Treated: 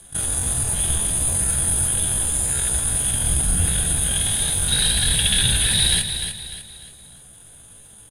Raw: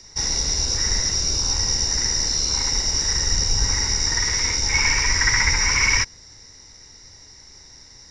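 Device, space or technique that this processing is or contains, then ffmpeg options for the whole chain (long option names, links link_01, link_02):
chipmunk voice: -filter_complex "[0:a]lowpass=frequency=8700:width=0.5412,lowpass=frequency=8700:width=1.3066,asettb=1/sr,asplit=3[link_01][link_02][link_03];[link_01]atrim=end=1.224[link_04];[link_02]atrim=start=1.22:end=1.89,asetpts=PTS-STARTPTS,afade=type=in:duration=0.004:curve=qsin,afade=type=out:start_time=0.666:duration=0.004:curve=qsin,highshelf=frequency=6800:gain=3[link_05];[link_03]atrim=start=1.886[link_06];[link_04][link_05]acrossfade=duration=0.004:curve1=hsin:curve2=qsin[link_07];[link_07][link_06]acrossfade=duration=0.004:curve1=qsin:curve2=hsin,asetrate=76340,aresample=44100,atempo=0.577676,aecho=1:1:299|598|897|1196:0.398|0.155|0.0606|0.0236"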